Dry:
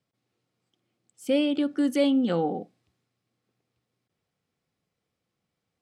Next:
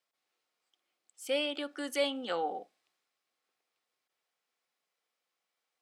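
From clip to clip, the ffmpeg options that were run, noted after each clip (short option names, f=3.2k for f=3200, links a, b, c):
-af "highpass=740"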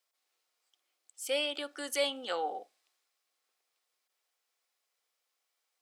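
-af "bass=f=250:g=-15,treble=f=4k:g=6"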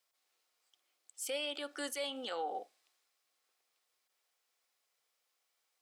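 -af "alimiter=level_in=6.5dB:limit=-24dB:level=0:latency=1:release=129,volume=-6.5dB,volume=1dB"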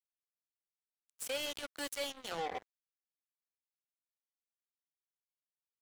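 -af "acrusher=bits=5:mix=0:aa=0.5,volume=-1dB"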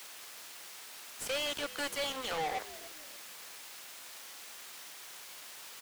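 -filter_complex "[0:a]aeval=exprs='val(0)+0.5*0.00168*sgn(val(0))':c=same,asplit=2[a][b];[b]highpass=f=720:p=1,volume=28dB,asoftclip=type=tanh:threshold=-30.5dB[c];[a][c]amix=inputs=2:normalize=0,lowpass=f=6k:p=1,volume=-6dB,asplit=4[d][e][f][g];[e]adelay=292,afreqshift=-92,volume=-17dB[h];[f]adelay=584,afreqshift=-184,volume=-26.6dB[i];[g]adelay=876,afreqshift=-276,volume=-36.3dB[j];[d][h][i][j]amix=inputs=4:normalize=0,volume=1.5dB"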